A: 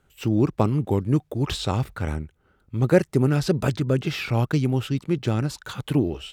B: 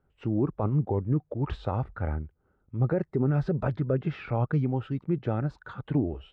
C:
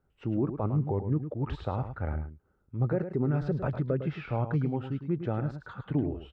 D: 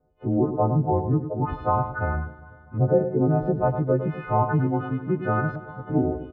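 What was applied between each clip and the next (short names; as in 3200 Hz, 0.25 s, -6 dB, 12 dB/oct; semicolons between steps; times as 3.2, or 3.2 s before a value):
LPF 1200 Hz 12 dB/oct; spectral noise reduction 6 dB; limiter -17 dBFS, peak gain reduction 11.5 dB
echo 0.106 s -9.5 dB; gain -2.5 dB
frequency quantiser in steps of 3 st; LFO low-pass saw up 0.36 Hz 620–1500 Hz; feedback echo 0.248 s, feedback 57%, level -19.5 dB; gain +6 dB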